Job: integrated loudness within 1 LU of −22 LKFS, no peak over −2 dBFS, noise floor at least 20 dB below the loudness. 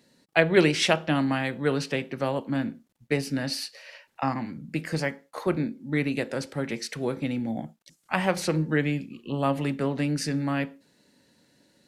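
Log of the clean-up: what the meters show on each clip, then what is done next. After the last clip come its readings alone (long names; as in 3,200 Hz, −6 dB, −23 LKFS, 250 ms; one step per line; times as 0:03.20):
integrated loudness −27.5 LKFS; sample peak −4.0 dBFS; target loudness −22.0 LKFS
→ level +5.5 dB
brickwall limiter −2 dBFS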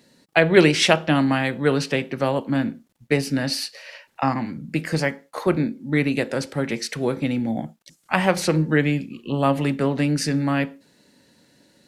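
integrated loudness −22.0 LKFS; sample peak −2.0 dBFS; background noise floor −65 dBFS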